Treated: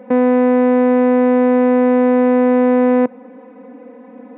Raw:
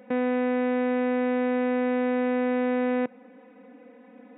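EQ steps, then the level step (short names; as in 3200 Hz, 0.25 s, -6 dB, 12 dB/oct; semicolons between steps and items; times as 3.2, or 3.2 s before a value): ten-band EQ 125 Hz +9 dB, 250 Hz +10 dB, 500 Hz +9 dB, 1000 Hz +12 dB, 2000 Hz +4 dB; -1.5 dB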